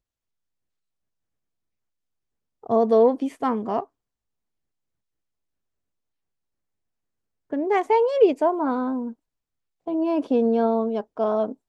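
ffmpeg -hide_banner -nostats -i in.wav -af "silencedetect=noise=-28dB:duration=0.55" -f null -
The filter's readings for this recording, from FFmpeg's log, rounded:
silence_start: 0.00
silence_end: 2.66 | silence_duration: 2.66
silence_start: 3.83
silence_end: 7.53 | silence_duration: 3.70
silence_start: 9.09
silence_end: 9.88 | silence_duration: 0.79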